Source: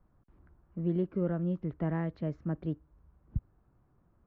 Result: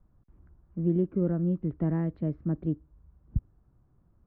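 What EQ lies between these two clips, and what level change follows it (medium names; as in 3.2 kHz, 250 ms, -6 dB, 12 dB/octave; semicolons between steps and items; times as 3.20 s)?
dynamic bell 300 Hz, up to +6 dB, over -45 dBFS, Q 1.2; distance through air 260 m; bass shelf 230 Hz +8 dB; -2.5 dB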